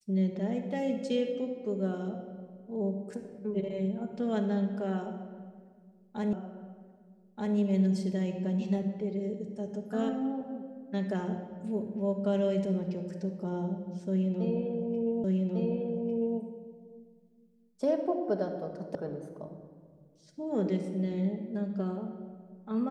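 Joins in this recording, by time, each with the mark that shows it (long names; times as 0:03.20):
0:06.33: the same again, the last 1.23 s
0:15.24: the same again, the last 1.15 s
0:18.95: cut off before it has died away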